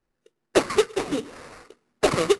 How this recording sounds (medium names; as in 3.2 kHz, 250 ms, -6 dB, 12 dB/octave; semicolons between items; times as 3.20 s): aliases and images of a low sample rate 3.3 kHz, jitter 20%; AAC